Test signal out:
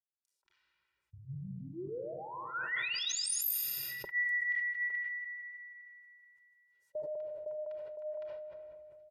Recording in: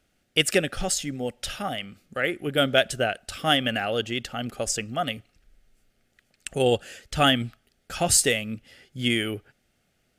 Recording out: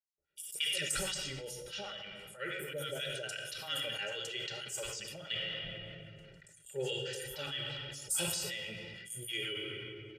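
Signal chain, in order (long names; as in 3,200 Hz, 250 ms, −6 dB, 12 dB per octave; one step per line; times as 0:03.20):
high-pass filter 57 Hz
first-order pre-emphasis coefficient 0.9
mains-hum notches 60/120/180/240/300/360 Hz
low-pass that shuts in the quiet parts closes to 1,600 Hz, open at −31 dBFS
parametric band 100 Hz −14 dB 0.22 octaves
comb filter 2.1 ms, depth 100%
harmonic and percussive parts rebalanced harmonic +5 dB
downward compressor 8 to 1, threshold −31 dBFS
two-band tremolo in antiphase 6.2 Hz, depth 100%, crossover 830 Hz
three-band delay without the direct sound highs, lows, mids 180/230 ms, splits 950/5,900 Hz
rectangular room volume 2,600 cubic metres, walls mixed, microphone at 1.2 metres
level that may fall only so fast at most 20 dB per second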